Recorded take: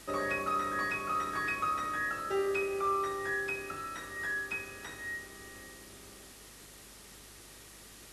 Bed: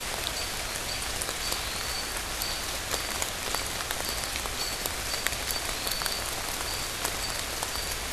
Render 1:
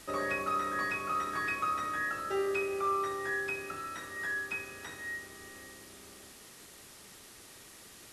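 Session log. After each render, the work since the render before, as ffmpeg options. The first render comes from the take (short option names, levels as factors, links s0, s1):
-af "bandreject=f=50:t=h:w=4,bandreject=f=100:t=h:w=4,bandreject=f=150:t=h:w=4,bandreject=f=200:t=h:w=4,bandreject=f=250:t=h:w=4,bandreject=f=300:t=h:w=4,bandreject=f=350:t=h:w=4,bandreject=f=400:t=h:w=4,bandreject=f=450:t=h:w=4,bandreject=f=500:t=h:w=4,bandreject=f=550:t=h:w=4"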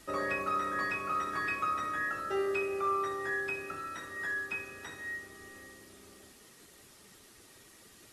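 -af "afftdn=nr=6:nf=-53"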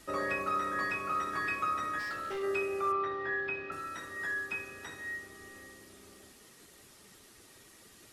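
-filter_complex "[0:a]asplit=3[s0][s1][s2];[s0]afade=t=out:st=1.98:d=0.02[s3];[s1]asoftclip=type=hard:threshold=0.0188,afade=t=in:st=1.98:d=0.02,afade=t=out:st=2.42:d=0.02[s4];[s2]afade=t=in:st=2.42:d=0.02[s5];[s3][s4][s5]amix=inputs=3:normalize=0,asettb=1/sr,asplit=3[s6][s7][s8];[s6]atrim=end=2.924[s9];[s7]atrim=start=2.92:end=3.72,asetpts=PTS-STARTPTS,afade=t=in:d=0.004:c=qsin,afade=t=out:st=0.796:d=0.004:c=qsin,lowpass=f=4000:w=0.5412,lowpass=f=4000:w=1.3066[s10];[s8]atrim=start=3.716[s11];[s9][s10]acrossfade=d=0.004:c1=hsin:c2=qsin[s12];[s12][s11]acrossfade=d=0.004:c1=qsin:c2=hsin"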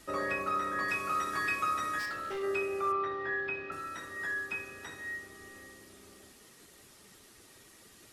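-filter_complex "[0:a]asettb=1/sr,asplit=3[s0][s1][s2];[s0]atrim=end=0.884[s3];[s1]atrim=start=0.88:end=2.06,asetpts=PTS-STARTPTS,afade=t=in:d=0.004:c=qsin,afade=t=out:st=1.176:d=0.004:c=qsin,highshelf=f=3500:g=8[s4];[s2]atrim=start=2.056[s5];[s3][s4]acrossfade=d=0.004:c1=hsin:c2=qsin[s6];[s6][s5]acrossfade=d=0.004:c1=qsin:c2=hsin"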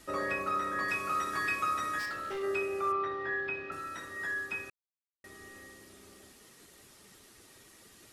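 -filter_complex "[0:a]asplit=3[s0][s1][s2];[s0]atrim=end=4.7,asetpts=PTS-STARTPTS,afade=t=out:st=4.696:d=0.004:c=hsin[s3];[s1]atrim=start=4.7:end=5.24,asetpts=PTS-STARTPTS,volume=0[s4];[s2]atrim=start=5.24,asetpts=PTS-STARTPTS,afade=t=in:d=0.004:c=hsin[s5];[s3][s4][s5]concat=n=3:v=0:a=1"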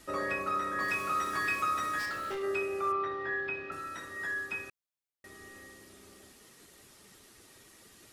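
-filter_complex "[0:a]asettb=1/sr,asplit=3[s0][s1][s2];[s0]atrim=end=0.804[s3];[s1]atrim=start=0.8:end=2.35,asetpts=PTS-STARTPTS,afade=t=in:d=0.004:c=qsin,afade=t=out:st=1.546:d=0.004:c=qsin,aeval=exprs='val(0)+0.5*0.00562*sgn(val(0))':c=same[s4];[s2]atrim=start=2.346[s5];[s3][s4]acrossfade=d=0.004:c1=hsin:c2=qsin[s6];[s6][s5]acrossfade=d=0.004:c1=qsin:c2=hsin"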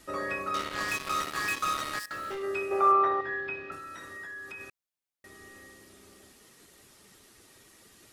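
-filter_complex "[0:a]asettb=1/sr,asplit=3[s0][s1][s2];[s0]atrim=end=0.544[s3];[s1]atrim=start=0.54:end=2.11,asetpts=PTS-STARTPTS,afade=t=in:d=0.004:c=qsin,afade=t=out:st=1.566:d=0.004:c=qsin,acrusher=bits=4:mix=0:aa=0.5[s4];[s2]atrim=start=2.106[s5];[s3][s4]acrossfade=d=0.004:c1=hsin:c2=qsin[s6];[s6][s5]acrossfade=d=0.004:c1=qsin:c2=hsin,asettb=1/sr,asplit=3[s7][s8][s9];[s7]atrim=end=2.714[s10];[s8]atrim=start=2.71:end=3.21,asetpts=PTS-STARTPTS,afade=t=in:d=0.004:c=qsin,afade=t=out:st=0.496:d=0.004:c=qsin,equalizer=f=790:t=o:w=1.8:g=14.5[s11];[s9]atrim=start=3.206[s12];[s10][s11]acrossfade=d=0.004:c1=hsin:c2=qsin[s13];[s13][s12]acrossfade=d=0.004:c1=qsin:c2=hsin,asettb=1/sr,asplit=3[s14][s15][s16];[s14]atrim=end=3.754[s17];[s15]atrim=start=3.75:end=4.61,asetpts=PTS-STARTPTS,afade=t=in:d=0.004:c=qsin,afade=t=out:st=0.856:d=0.004:c=qsin,acompressor=threshold=0.0112:ratio=6:attack=3.2:release=140:knee=1:detection=peak[s18];[s16]atrim=start=4.606[s19];[s17][s18]acrossfade=d=0.004:c1=hsin:c2=qsin[s20];[s20][s19]acrossfade=d=0.004:c1=qsin:c2=hsin"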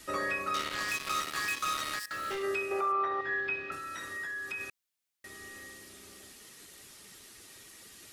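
-filter_complex "[0:a]acrossover=split=700|1600[s0][s1][s2];[s2]acontrast=50[s3];[s0][s1][s3]amix=inputs=3:normalize=0,alimiter=limit=0.0708:level=0:latency=1:release=383"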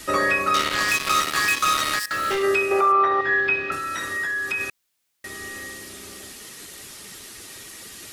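-af "volume=3.98"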